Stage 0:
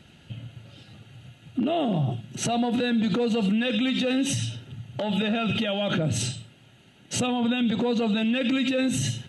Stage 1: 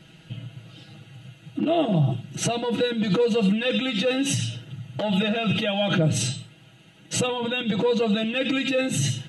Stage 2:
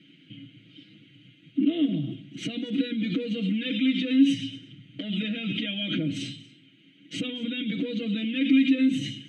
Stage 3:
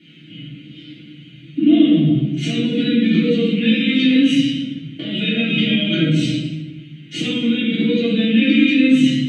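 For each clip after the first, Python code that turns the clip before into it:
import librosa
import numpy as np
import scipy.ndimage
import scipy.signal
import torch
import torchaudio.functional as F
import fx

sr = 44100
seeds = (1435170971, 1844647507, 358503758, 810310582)

y1 = x + 0.89 * np.pad(x, (int(6.2 * sr / 1000.0), 0))[:len(x)]
y2 = fx.vowel_filter(y1, sr, vowel='i')
y2 = y2 + 10.0 ** (-21.0 / 20.0) * np.pad(y2, (int(235 * sr / 1000.0), 0))[:len(y2)]
y2 = y2 * 10.0 ** (8.0 / 20.0)
y3 = fx.doubler(y2, sr, ms=13.0, db=-4)
y3 = fx.room_shoebox(y3, sr, seeds[0], volume_m3=530.0, walls='mixed', distance_m=3.3)
y3 = y3 * 10.0 ** (2.0 / 20.0)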